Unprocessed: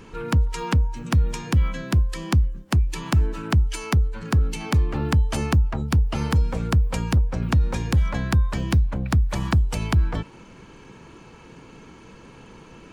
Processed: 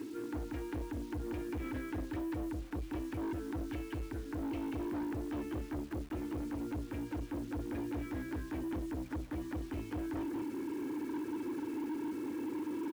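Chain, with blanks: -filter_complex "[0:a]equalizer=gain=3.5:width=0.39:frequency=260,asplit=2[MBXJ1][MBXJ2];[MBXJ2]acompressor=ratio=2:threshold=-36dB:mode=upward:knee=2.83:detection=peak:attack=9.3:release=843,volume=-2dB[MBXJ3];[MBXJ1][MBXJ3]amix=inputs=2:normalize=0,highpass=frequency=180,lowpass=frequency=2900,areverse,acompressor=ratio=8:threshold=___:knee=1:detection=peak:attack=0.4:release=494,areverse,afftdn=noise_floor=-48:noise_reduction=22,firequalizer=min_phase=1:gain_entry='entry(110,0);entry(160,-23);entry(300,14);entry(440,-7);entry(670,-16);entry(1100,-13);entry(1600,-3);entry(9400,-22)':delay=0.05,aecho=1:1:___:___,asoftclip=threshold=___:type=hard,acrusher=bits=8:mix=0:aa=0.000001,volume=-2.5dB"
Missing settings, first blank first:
-28dB, 186, 0.668, -32.5dB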